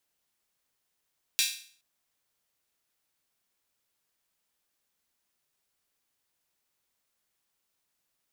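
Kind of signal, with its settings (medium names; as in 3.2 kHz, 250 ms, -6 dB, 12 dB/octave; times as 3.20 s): open hi-hat length 0.42 s, high-pass 3 kHz, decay 0.48 s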